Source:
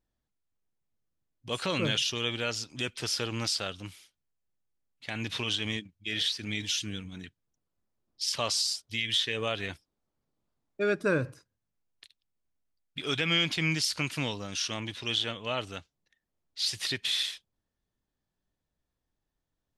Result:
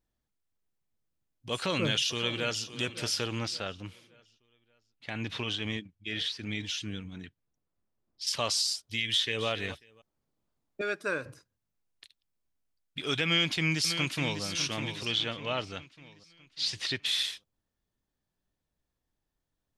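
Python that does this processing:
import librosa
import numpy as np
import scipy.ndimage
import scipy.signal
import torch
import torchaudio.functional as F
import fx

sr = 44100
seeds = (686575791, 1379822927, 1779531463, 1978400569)

y = fx.echo_throw(x, sr, start_s=1.53, length_s=1.13, ms=570, feedback_pct=40, wet_db=-13.0)
y = fx.lowpass(y, sr, hz=2900.0, slope=6, at=(3.39, 8.27))
y = fx.echo_throw(y, sr, start_s=8.99, length_s=0.48, ms=270, feedback_pct=20, wet_db=-13.5)
y = fx.highpass(y, sr, hz=900.0, slope=6, at=(10.81, 11.26))
y = fx.echo_throw(y, sr, start_s=13.24, length_s=1.19, ms=600, feedback_pct=45, wet_db=-8.5)
y = fx.lowpass(y, sr, hz=6000.0, slope=12, at=(15.05, 17.06))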